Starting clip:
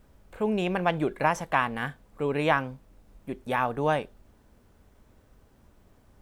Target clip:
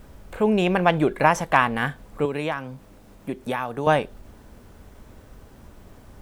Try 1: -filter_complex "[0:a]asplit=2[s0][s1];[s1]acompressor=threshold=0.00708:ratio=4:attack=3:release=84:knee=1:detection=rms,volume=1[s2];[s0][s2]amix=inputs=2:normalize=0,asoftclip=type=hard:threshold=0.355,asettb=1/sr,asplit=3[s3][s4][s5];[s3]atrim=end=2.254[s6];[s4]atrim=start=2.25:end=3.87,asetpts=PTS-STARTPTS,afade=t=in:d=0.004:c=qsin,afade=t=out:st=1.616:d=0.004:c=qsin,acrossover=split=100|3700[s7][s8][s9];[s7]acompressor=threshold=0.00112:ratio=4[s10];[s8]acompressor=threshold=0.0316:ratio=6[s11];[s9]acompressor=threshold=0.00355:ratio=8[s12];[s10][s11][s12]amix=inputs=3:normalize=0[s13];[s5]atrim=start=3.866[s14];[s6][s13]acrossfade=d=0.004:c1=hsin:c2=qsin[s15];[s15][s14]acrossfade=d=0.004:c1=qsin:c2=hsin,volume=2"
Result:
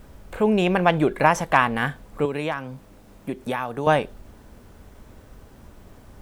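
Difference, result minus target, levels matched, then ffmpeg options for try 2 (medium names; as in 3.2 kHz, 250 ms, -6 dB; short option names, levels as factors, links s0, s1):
compression: peak gain reduction -5 dB
-filter_complex "[0:a]asplit=2[s0][s1];[s1]acompressor=threshold=0.00335:ratio=4:attack=3:release=84:knee=1:detection=rms,volume=1[s2];[s0][s2]amix=inputs=2:normalize=0,asoftclip=type=hard:threshold=0.355,asettb=1/sr,asplit=3[s3][s4][s5];[s3]atrim=end=2.254[s6];[s4]atrim=start=2.25:end=3.87,asetpts=PTS-STARTPTS,afade=t=in:d=0.004:c=qsin,afade=t=out:st=1.616:d=0.004:c=qsin,acrossover=split=100|3700[s7][s8][s9];[s7]acompressor=threshold=0.00112:ratio=4[s10];[s8]acompressor=threshold=0.0316:ratio=6[s11];[s9]acompressor=threshold=0.00355:ratio=8[s12];[s10][s11][s12]amix=inputs=3:normalize=0[s13];[s5]atrim=start=3.866[s14];[s6][s13]acrossfade=d=0.004:c1=hsin:c2=qsin[s15];[s15][s14]acrossfade=d=0.004:c1=qsin:c2=hsin,volume=2"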